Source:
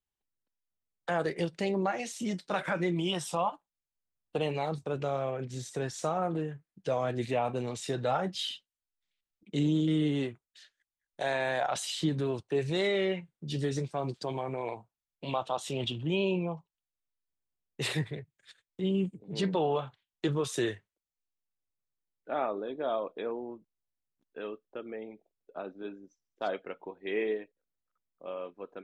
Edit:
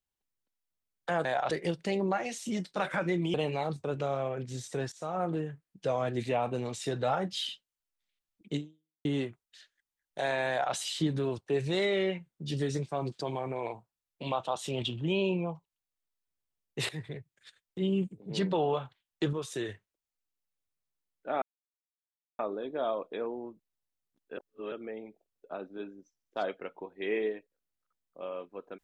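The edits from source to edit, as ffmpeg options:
-filter_complex "[0:a]asplit=12[a][b][c][d][e][f][g][h][i][j][k][l];[a]atrim=end=1.252[m];[b]atrim=start=11.508:end=11.772[n];[c]atrim=start=1.248:end=3.082[o];[d]atrim=start=4.358:end=5.94,asetpts=PTS-STARTPTS,afade=t=out:st=1.578:d=0.004:c=hsin:silence=0.112202[p];[e]atrim=start=5.94:end=10.07,asetpts=PTS-STARTPTS,afade=t=in:d=0.32:silence=0.112202,afade=t=out:st=3.63:d=0.5:c=exp[q];[f]atrim=start=10.07:end=17.91,asetpts=PTS-STARTPTS,afade=t=in:d=0.004:c=hsin,afade=t=out:st=7.836:d=0.004:c=hsin:silence=0.149624[r];[g]atrim=start=17.91:end=20.352,asetpts=PTS-STARTPTS,afade=t=in:d=0.3:silence=0.149624[s];[h]atrim=start=20.348:end=20.712,asetpts=PTS-STARTPTS,volume=-5dB[t];[i]atrim=start=20.708:end=22.44,asetpts=PTS-STARTPTS,afade=t=out:st=1.728:d=0.004:c=hsin,apad=pad_dur=0.97[u];[j]atrim=start=22.44:end=24.422,asetpts=PTS-STARTPTS,afade=t=in:d=0.004:c=hsin[v];[k]atrim=start=24.418:end=24.772,asetpts=PTS-STARTPTS,areverse[w];[l]atrim=start=24.768[x];[m][n]acrossfade=d=0.004:c1=hsin:c2=hsin[y];[y][o]acrossfade=d=0.004:c1=hsin:c2=hsin[z];[p][q][r][s]concat=n=4:v=0:a=1[aa];[z][aa]acrossfade=d=0.004:c1=hsin:c2=hsin[ab];[ab][t]acrossfade=d=0.004:c1=hsin:c2=hsin[ac];[u][v]concat=n=2:v=0:a=1[ad];[ac][ad]acrossfade=d=0.004:c1=hsin:c2=hsin[ae];[ae][w]acrossfade=d=0.004:c1=hsin:c2=hsin[af];[af][x]acrossfade=d=0.004:c1=hsin:c2=hsin"

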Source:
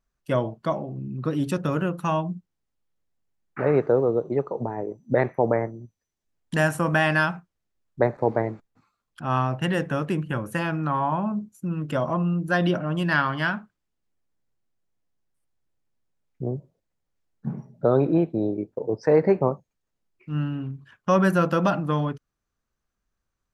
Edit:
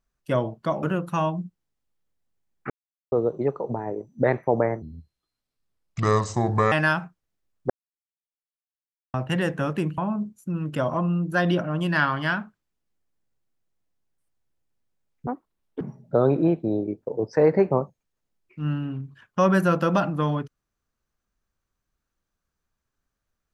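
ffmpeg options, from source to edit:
-filter_complex "[0:a]asplit=11[a][b][c][d][e][f][g][h][i][j][k];[a]atrim=end=0.832[l];[b]atrim=start=1.738:end=3.61,asetpts=PTS-STARTPTS,afade=t=out:st=1.868:d=0.004:c=hsin[m];[c]atrim=start=3.61:end=4.03,asetpts=PTS-STARTPTS,volume=0[n];[d]atrim=start=4.03:end=5.734,asetpts=PTS-STARTPTS,afade=t=in:d=0.004:c=hsin[o];[e]atrim=start=5.73:end=7.04,asetpts=PTS-STARTPTS,asetrate=30429,aresample=44100,atrim=end_sample=83726,asetpts=PTS-STARTPTS[p];[f]atrim=start=7.036:end=8.02,asetpts=PTS-STARTPTS,afade=t=out:st=0.98:d=0.004:c=hsin[q];[g]atrim=start=8.02:end=9.46,asetpts=PTS-STARTPTS,volume=0[r];[h]atrim=start=9.46:end=10.302,asetpts=PTS-STARTPTS,afade=t=in:d=0.004:c=hsin[s];[i]atrim=start=11.138:end=16.434[t];[j]atrim=start=16.43:end=17.51,asetpts=PTS-STARTPTS,asetrate=88200,aresample=44100[u];[k]atrim=start=17.506[v];[m][n][o]concat=n=3:v=0:a=1[w];[l][w]acrossfade=d=0.004:c1=hsin:c2=hsin[x];[x][p]acrossfade=d=0.004:c1=hsin:c2=hsin[y];[q][r][s]concat=n=3:v=0:a=1[z];[y][z]acrossfade=d=0.004:c1=hsin:c2=hsin[aa];[aa][t]acrossfade=d=0.004:c1=hsin:c2=hsin[ab];[ab][u]acrossfade=d=0.004:c1=hsin:c2=hsin[ac];[ac][v]acrossfade=d=0.004:c1=hsin:c2=hsin"

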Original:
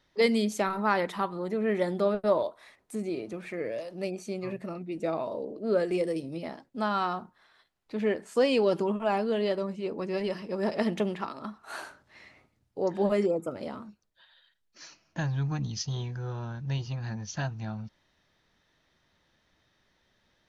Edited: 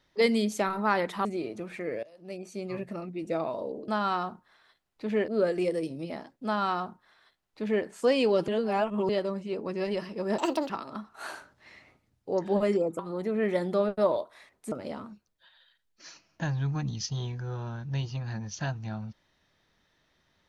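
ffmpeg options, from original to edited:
-filter_complex "[0:a]asplit=11[a][b][c][d][e][f][g][h][i][j][k];[a]atrim=end=1.252[l];[b]atrim=start=2.978:end=3.76,asetpts=PTS-STARTPTS,afade=t=out:st=0.778:d=0.004:c=hsin:silence=0.0841395[m];[c]atrim=start=3.76:end=5.612,asetpts=PTS-STARTPTS,afade=t=in:d=0.71:silence=0.0841395[n];[d]atrim=start=6.778:end=8.182[o];[e]atrim=start=5.608:end=8.812[p];[f]atrim=start=8.808:end=9.422,asetpts=PTS-STARTPTS,areverse[q];[g]atrim=start=9.418:end=10.714[r];[h]atrim=start=10.71:end=11.19,asetpts=PTS-STARTPTS,asetrate=66591,aresample=44100[s];[i]atrim=start=11.186:end=13.482[t];[j]atrim=start=1.248:end=2.982[u];[k]atrim=start=13.478[v];[m][n]concat=n=2:v=0:a=1[w];[l][w]acrossfade=d=0.004:c1=hsin:c2=hsin[x];[x][o]acrossfade=d=0.004:c1=hsin:c2=hsin[y];[y][p]acrossfade=d=0.004:c1=hsin:c2=hsin[z];[z][q]acrossfade=d=0.004:c1=hsin:c2=hsin[aa];[aa][r]acrossfade=d=0.004:c1=hsin:c2=hsin[ab];[ab][s]acrossfade=d=0.004:c1=hsin:c2=hsin[ac];[ac][t]acrossfade=d=0.004:c1=hsin:c2=hsin[ad];[ad][u]acrossfade=d=0.004:c1=hsin:c2=hsin[ae];[ae][v]acrossfade=d=0.004:c1=hsin:c2=hsin"

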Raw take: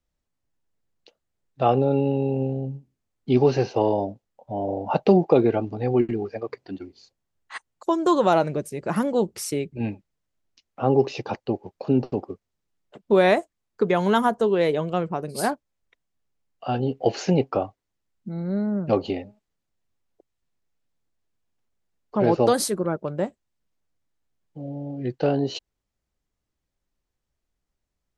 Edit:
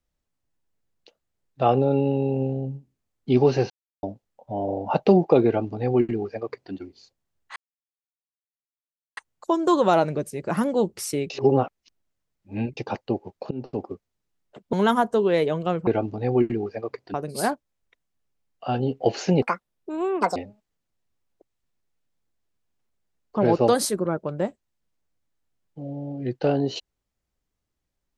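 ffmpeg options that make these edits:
-filter_complex "[0:a]asplit=12[a][b][c][d][e][f][g][h][i][j][k][l];[a]atrim=end=3.7,asetpts=PTS-STARTPTS,afade=t=out:st=3.696:d=0.004:c=hsin[m];[b]atrim=start=3.7:end=4.03,asetpts=PTS-STARTPTS,volume=0[n];[c]atrim=start=4.03:end=7.56,asetpts=PTS-STARTPTS,afade=t=in:d=0.004:c=hsin,afade=t=out:st=3.526:d=0.004:c=hsin,apad=pad_dur=1.61[o];[d]atrim=start=7.56:end=9.692,asetpts=PTS-STARTPTS,afade=t=in:d=0.004:c=hsin[p];[e]atrim=start=9.688:end=11.162,asetpts=PTS-STARTPTS,areverse[q];[f]atrim=start=11.158:end=11.9,asetpts=PTS-STARTPTS,afade=t=out:st=0.738:d=0.004:c=hsin:silence=0.0668344[r];[g]atrim=start=11.9:end=13.122,asetpts=PTS-STARTPTS,afade=t=in:d=0.36:silence=0.0668344[s];[h]atrim=start=13.998:end=15.142[t];[i]atrim=start=5.458:end=6.732[u];[j]atrim=start=15.138:end=17.424[v];[k]atrim=start=17.42:end=19.15,asetpts=PTS-STARTPTS,asetrate=81144,aresample=44100[w];[l]atrim=start=19.146[x];[m][n][o][p]concat=n=4:v=0:a=1[y];[y][q]acrossfade=d=0.004:c1=hsin:c2=hsin[z];[r][s]concat=n=2:v=0:a=1[aa];[z][aa]acrossfade=d=0.004:c1=hsin:c2=hsin[ab];[ab][t]acrossfade=d=0.004:c1=hsin:c2=hsin[ac];[ac][u]acrossfade=d=0.004:c1=hsin:c2=hsin[ad];[ad][v]acrossfade=d=0.004:c1=hsin:c2=hsin[ae];[ae][w]acrossfade=d=0.004:c1=hsin:c2=hsin[af];[af][x]acrossfade=d=0.004:c1=hsin:c2=hsin"

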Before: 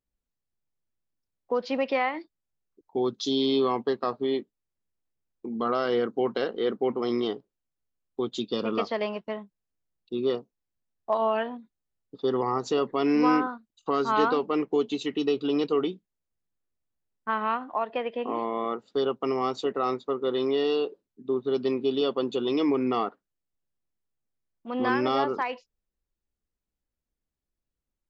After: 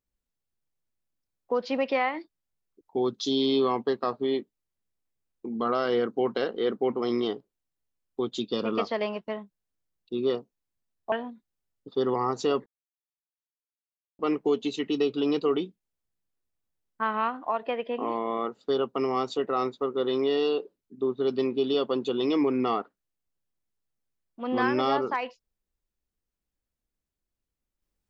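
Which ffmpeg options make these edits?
-filter_complex "[0:a]asplit=4[a][b][c][d];[a]atrim=end=11.122[e];[b]atrim=start=11.388:end=12.93,asetpts=PTS-STARTPTS,afade=t=out:st=1.538:d=0.004:c=hsin[f];[c]atrim=start=12.93:end=14.46,asetpts=PTS-STARTPTS,volume=0[g];[d]atrim=start=14.46,asetpts=PTS-STARTPTS,afade=t=in:d=0.004:c=hsin[h];[f][g][h]concat=n=3:v=0:a=1[i];[e][i]acrossfade=d=0.004:c1=hsin:c2=hsin"

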